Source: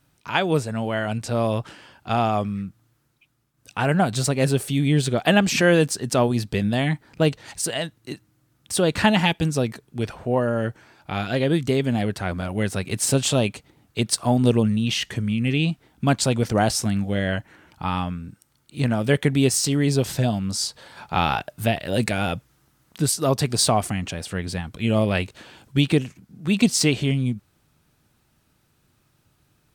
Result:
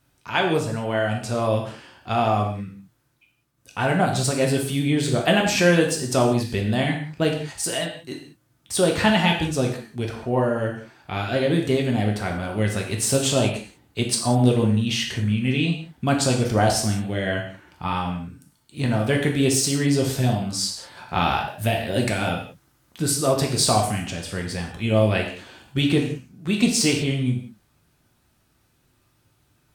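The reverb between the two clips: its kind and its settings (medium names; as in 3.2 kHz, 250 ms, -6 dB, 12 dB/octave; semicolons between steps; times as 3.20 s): gated-style reverb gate 220 ms falling, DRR 0.5 dB; trim -2 dB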